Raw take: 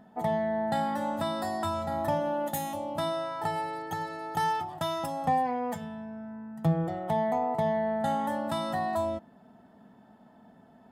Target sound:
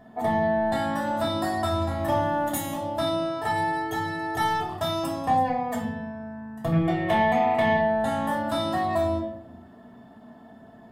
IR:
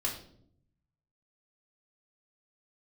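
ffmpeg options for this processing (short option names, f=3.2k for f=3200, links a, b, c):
-filter_complex "[0:a]asplit=2[a][b];[b]asoftclip=type=tanh:threshold=-30.5dB,volume=-8.5dB[c];[a][c]amix=inputs=2:normalize=0,asettb=1/sr,asplit=3[d][e][f];[d]atrim=end=6.724[g];[e]atrim=start=6.72:end=7.77,asetpts=PTS-STARTPTS,afade=t=in:d=0.004:c=qsin,afade=t=out:st=1.046:d=0.004:c=qsin,equalizer=f=2.5k:t=o:w=1.2:g=14.5[h];[f]atrim=start=7.766[i];[g][h]acrossfade=d=0.004:c1=hsin:c2=qsin[j];[j][i]acrossfade=d=0.004:c1=qsin:c2=hsin[k];[1:a]atrim=start_sample=2205[l];[k][l]afir=irnorm=-1:irlink=0,asettb=1/sr,asplit=3[m][n][o];[m]atrim=end=1.984[p];[n]atrim=start=1.98:end=2.76,asetpts=PTS-STARTPTS,afade=t=in:d=0.004:c=qsin,afade=t=out:st=0.776:d=0.004:c=qsin,aeval=exprs='sgn(val(0))*max(abs(val(0))-0.00126,0)':c=same[q];[o]atrim=start=2.756[r];[p][q]acrossfade=d=0.004:c1=hsin:c2=qsin[s];[s][r]acrossfade=d=0.004:c1=qsin:c2=hsin"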